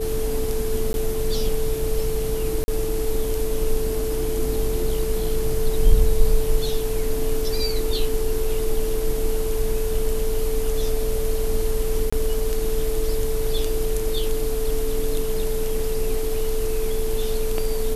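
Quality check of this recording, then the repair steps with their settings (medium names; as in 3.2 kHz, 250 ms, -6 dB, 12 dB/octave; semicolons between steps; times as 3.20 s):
whine 440 Hz -25 dBFS
0.93–0.94 s: dropout 11 ms
2.64–2.68 s: dropout 40 ms
12.10–12.12 s: dropout 25 ms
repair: band-stop 440 Hz, Q 30; interpolate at 0.93 s, 11 ms; interpolate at 2.64 s, 40 ms; interpolate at 12.10 s, 25 ms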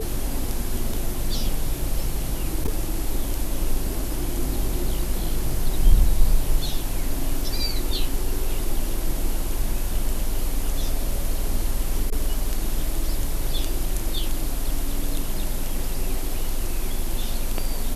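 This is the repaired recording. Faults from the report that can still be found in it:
nothing left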